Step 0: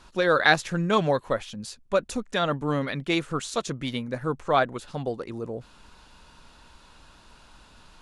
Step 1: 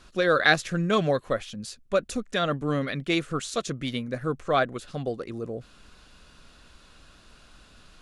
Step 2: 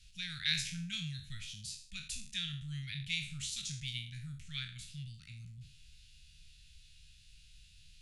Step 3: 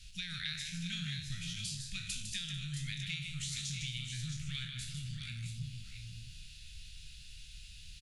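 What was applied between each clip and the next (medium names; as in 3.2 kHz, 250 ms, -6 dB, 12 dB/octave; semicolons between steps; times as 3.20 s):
peaking EQ 910 Hz -14.5 dB 0.22 oct
spectral sustain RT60 0.46 s; inverse Chebyshev band-stop 340–1000 Hz, stop band 60 dB; trim -6 dB
compression 6:1, threshold -45 dBFS, peak gain reduction 17 dB; on a send: multi-tap echo 154/444/640/668 ms -6.5/-19.5/-12.5/-7.5 dB; on the sum: trim +7 dB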